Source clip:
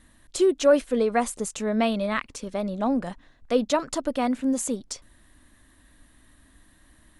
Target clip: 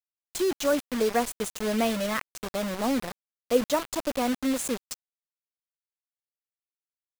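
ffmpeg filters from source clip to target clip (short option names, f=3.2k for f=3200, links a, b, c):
-af "asetnsamples=n=441:p=0,asendcmd='1.01 equalizer g 3.5',equalizer=f=480:w=4.2:g=-13,acrusher=bits=4:mix=0:aa=0.000001,volume=-3dB"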